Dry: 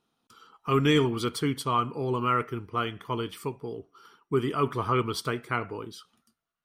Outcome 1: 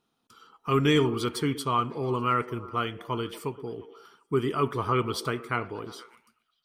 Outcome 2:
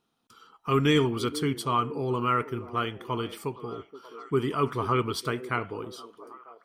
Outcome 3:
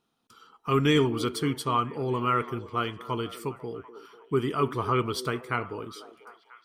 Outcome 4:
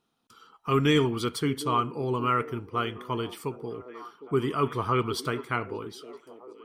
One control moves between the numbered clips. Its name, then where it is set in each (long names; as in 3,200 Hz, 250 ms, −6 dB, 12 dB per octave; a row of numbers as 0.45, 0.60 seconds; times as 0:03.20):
echo through a band-pass that steps, delay time: 119, 473, 247, 758 milliseconds